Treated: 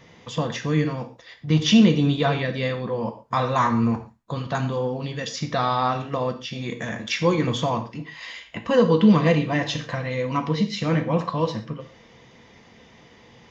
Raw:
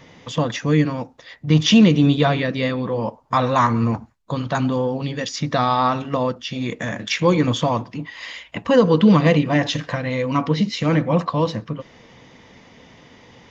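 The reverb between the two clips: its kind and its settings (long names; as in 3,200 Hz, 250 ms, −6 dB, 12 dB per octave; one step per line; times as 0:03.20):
reverb whose tail is shaped and stops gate 160 ms falling, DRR 5.5 dB
level −4.5 dB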